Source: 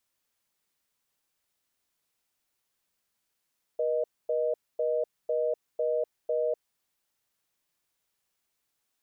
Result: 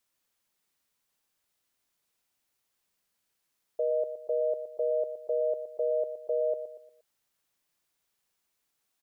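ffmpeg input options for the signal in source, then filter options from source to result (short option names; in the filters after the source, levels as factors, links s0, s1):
-f lavfi -i "aevalsrc='0.0422*(sin(2*PI*480*t)+sin(2*PI*620*t))*clip(min(mod(t,0.5),0.25-mod(t,0.5))/0.005,0,1)':d=2.75:s=44100"
-filter_complex "[0:a]bandreject=f=50:t=h:w=6,bandreject=f=100:t=h:w=6,asplit=2[s0][s1];[s1]aecho=0:1:118|236|354|472:0.316|0.12|0.0457|0.0174[s2];[s0][s2]amix=inputs=2:normalize=0"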